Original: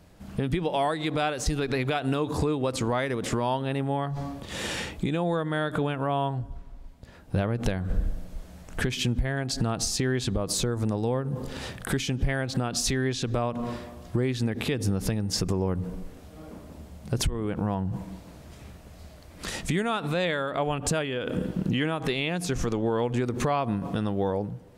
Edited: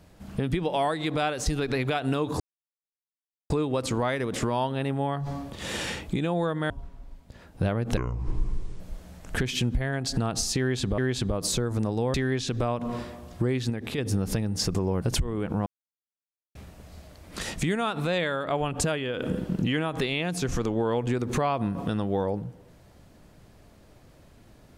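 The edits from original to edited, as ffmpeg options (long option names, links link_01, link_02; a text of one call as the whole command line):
ffmpeg -i in.wav -filter_complex "[0:a]asplit=12[link_01][link_02][link_03][link_04][link_05][link_06][link_07][link_08][link_09][link_10][link_11][link_12];[link_01]atrim=end=2.4,asetpts=PTS-STARTPTS,afade=type=out:start_time=2.396:duration=0.004:curve=hsin,apad=pad_dur=1.1[link_13];[link_02]atrim=start=2.4:end=5.602,asetpts=PTS-STARTPTS,afade=type=in:duration=0.004:curve=hsin[link_14];[link_03]atrim=start=6.428:end=7.704[link_15];[link_04]atrim=start=7.7:end=8.24,asetpts=PTS-STARTPTS,asetrate=28665,aresample=44100[link_16];[link_05]atrim=start=8.236:end=10.422[link_17];[link_06]atrim=start=10.038:end=11.202[link_18];[link_07]atrim=start=12.878:end=14.442[link_19];[link_08]atrim=start=14.438:end=14.722,asetpts=PTS-STARTPTS,volume=-4dB[link_20];[link_09]atrim=start=14.718:end=15.762[link_21];[link_10]atrim=start=17.088:end=17.73,asetpts=PTS-STARTPTS,afade=type=out:start_time=0.638:duration=0.004:curve=hsin[link_22];[link_11]atrim=start=17.73:end=18.62,asetpts=PTS-STARTPTS,volume=0[link_23];[link_12]atrim=start=18.62,asetpts=PTS-STARTPTS,afade=type=in:duration=0.004:curve=hsin[link_24];[link_13][link_14]concat=n=2:v=0:a=1[link_25];[link_25][link_15]acrossfade=duration=0.004:curve1=hsin:curve2=hsin[link_26];[link_26][link_16]acrossfade=duration=0.004:curve1=hsin:curve2=hsin[link_27];[link_27][link_17]acrossfade=duration=0.004:curve1=hsin:curve2=hsin[link_28];[link_28][link_18]acrossfade=duration=0.004:curve1=hsin:curve2=hsin[link_29];[link_29][link_19]acrossfade=duration=0.004:curve1=hsin:curve2=hsin[link_30];[link_30][link_20]acrossfade=duration=0.004:curve1=hsin:curve2=hsin[link_31];[link_31][link_21]acrossfade=duration=0.004:curve1=hsin:curve2=hsin[link_32];[link_22][link_23][link_24]concat=n=3:v=0:a=1[link_33];[link_32][link_33]acrossfade=duration=0.004:curve1=hsin:curve2=hsin" out.wav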